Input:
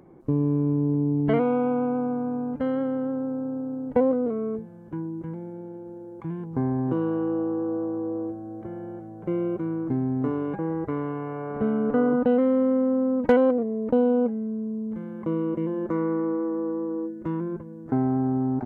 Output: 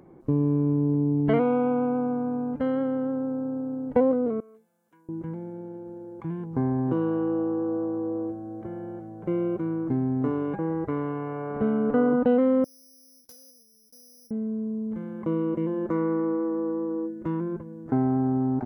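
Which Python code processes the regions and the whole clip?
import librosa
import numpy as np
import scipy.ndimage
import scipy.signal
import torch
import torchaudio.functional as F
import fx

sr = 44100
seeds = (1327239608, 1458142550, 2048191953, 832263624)

y = fx.chain(x, sr, fx.differentiator(),
    fx.comb(ms=4.3, depth=0.42), at=(4.4, 5.09))
y = fx.chain(y, sr, fx.cheby2_highpass(hz=2800.0, order=4, stop_db=40),
    fx.air_absorb(metres=100.0),
    fx.resample_bad(factor=8, down='none', up='zero_stuff'), at=(12.64, 14.31))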